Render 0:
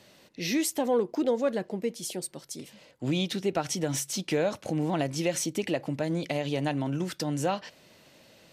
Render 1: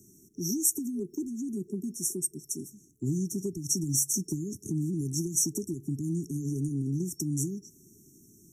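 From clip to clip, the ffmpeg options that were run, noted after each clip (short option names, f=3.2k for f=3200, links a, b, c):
-filter_complex "[0:a]afftfilt=real='re*(1-between(b*sr/4096,420,5500))':imag='im*(1-between(b*sr/4096,420,5500))':win_size=4096:overlap=0.75,highshelf=f=7.6k:g=6,acrossover=split=170|3000[a][b][c];[b]acompressor=threshold=-37dB:ratio=6[d];[a][d][c]amix=inputs=3:normalize=0,volume=3.5dB"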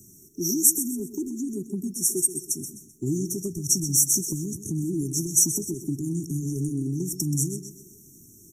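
-filter_complex "[0:a]crystalizer=i=0.5:c=0,flanger=delay=1:depth=2:regen=38:speed=1.1:shape=sinusoidal,asplit=2[a][b];[b]aecho=0:1:128|256|384|512:0.266|0.0958|0.0345|0.0124[c];[a][c]amix=inputs=2:normalize=0,volume=8.5dB"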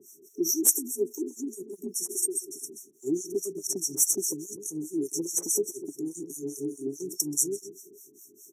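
-filter_complex "[0:a]asplit=2[a][b];[b]aeval=exprs='clip(val(0),-1,0.237)':c=same,volume=-7.5dB[c];[a][c]amix=inputs=2:normalize=0,highpass=f=470:t=q:w=4.9,acrossover=split=1400[d][e];[d]aeval=exprs='val(0)*(1-1/2+1/2*cos(2*PI*4.8*n/s))':c=same[f];[e]aeval=exprs='val(0)*(1-1/2-1/2*cos(2*PI*4.8*n/s))':c=same[g];[f][g]amix=inputs=2:normalize=0"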